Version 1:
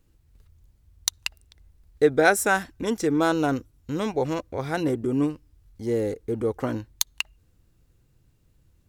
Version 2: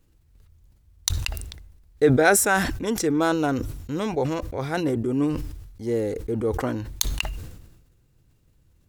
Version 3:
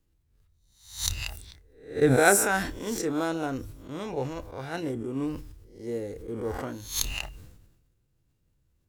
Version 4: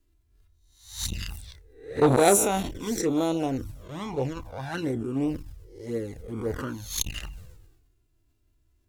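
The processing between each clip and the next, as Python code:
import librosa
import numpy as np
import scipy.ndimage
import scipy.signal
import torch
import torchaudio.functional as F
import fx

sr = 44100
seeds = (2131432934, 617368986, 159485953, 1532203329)

y1 = fx.sustainer(x, sr, db_per_s=51.0)
y2 = fx.spec_swells(y1, sr, rise_s=0.54)
y2 = fx.doubler(y2, sr, ms=30.0, db=-12)
y2 = fx.upward_expand(y2, sr, threshold_db=-29.0, expansion=1.5)
y2 = F.gain(torch.from_numpy(y2), -3.5).numpy()
y3 = fx.env_flanger(y2, sr, rest_ms=3.0, full_db=-25.0)
y3 = fx.transformer_sat(y3, sr, knee_hz=890.0)
y3 = F.gain(torch.from_numpy(y3), 5.0).numpy()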